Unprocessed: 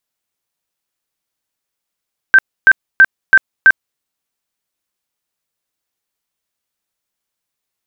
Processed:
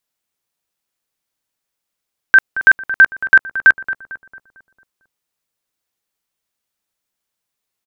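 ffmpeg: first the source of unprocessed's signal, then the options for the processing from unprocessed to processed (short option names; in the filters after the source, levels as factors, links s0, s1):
-f lavfi -i "aevalsrc='0.794*sin(2*PI*1560*mod(t,0.33))*lt(mod(t,0.33),72/1560)':d=1.65:s=44100"
-filter_complex "[0:a]asplit=2[s0][s1];[s1]adelay=225,lowpass=f=1600:p=1,volume=0.266,asplit=2[s2][s3];[s3]adelay=225,lowpass=f=1600:p=1,volume=0.54,asplit=2[s4][s5];[s5]adelay=225,lowpass=f=1600:p=1,volume=0.54,asplit=2[s6][s7];[s7]adelay=225,lowpass=f=1600:p=1,volume=0.54,asplit=2[s8][s9];[s9]adelay=225,lowpass=f=1600:p=1,volume=0.54,asplit=2[s10][s11];[s11]adelay=225,lowpass=f=1600:p=1,volume=0.54[s12];[s0][s2][s4][s6][s8][s10][s12]amix=inputs=7:normalize=0"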